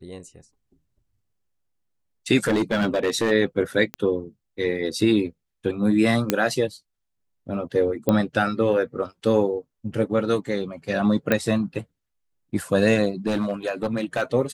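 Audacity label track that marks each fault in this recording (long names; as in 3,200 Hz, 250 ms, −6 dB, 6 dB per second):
2.440000	3.320000	clipping −17 dBFS
3.940000	3.940000	click −13 dBFS
6.300000	6.300000	click −4 dBFS
8.090000	8.090000	click −8 dBFS
11.320000	11.320000	click −7 dBFS
13.260000	14.230000	clipping −18.5 dBFS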